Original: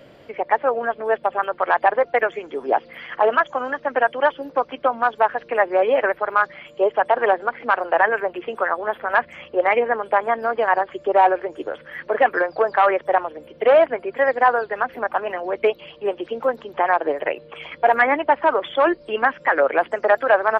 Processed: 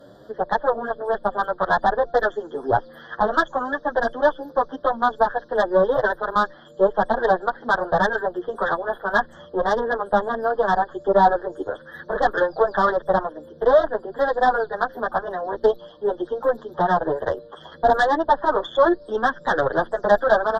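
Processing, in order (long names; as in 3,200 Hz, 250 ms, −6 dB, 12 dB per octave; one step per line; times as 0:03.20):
tube saturation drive 11 dB, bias 0.55
elliptic band-stop filter 1,700–3,400 Hz, stop band 50 dB
barber-pole flanger 8.3 ms +1.9 Hz
level +6 dB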